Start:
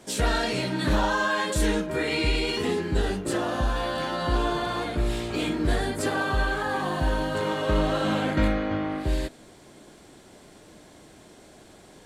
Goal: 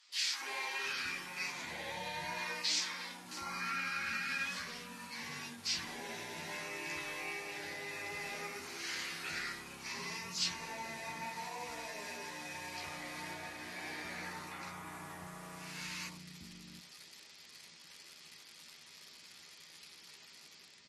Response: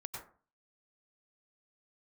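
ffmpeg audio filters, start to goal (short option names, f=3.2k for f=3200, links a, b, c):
-filter_complex "[0:a]aecho=1:1:7.1:0.68,dynaudnorm=f=140:g=5:m=7dB,highpass=f=110:p=1,bandreject=f=60:t=h:w=6,bandreject=f=120:t=h:w=6,bandreject=f=180:t=h:w=6,bandreject=f=240:t=h:w=6,bandreject=f=300:t=h:w=6,bandreject=f=360:t=h:w=6,bandreject=f=420:t=h:w=6,asplit=2[a][b];[b]acrusher=bits=5:mix=0:aa=0.000001,volume=-9.5dB[c];[a][c]amix=inputs=2:normalize=0,acompressor=threshold=-19dB:ratio=6,aderivative,acrossover=split=520|1600[d][e][f];[e]adelay=50[g];[d]adelay=410[h];[h][g][f]amix=inputs=3:normalize=0,asetrate=25442,aresample=44100,bass=f=250:g=4,treble=f=4k:g=-4,volume=-4dB" -ar 44100 -c:a libmp3lame -b:a 56k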